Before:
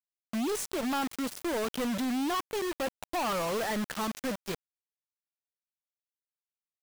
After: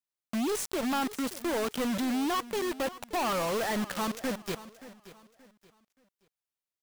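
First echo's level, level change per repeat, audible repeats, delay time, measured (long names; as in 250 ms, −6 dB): −16.5 dB, −10.0 dB, 2, 577 ms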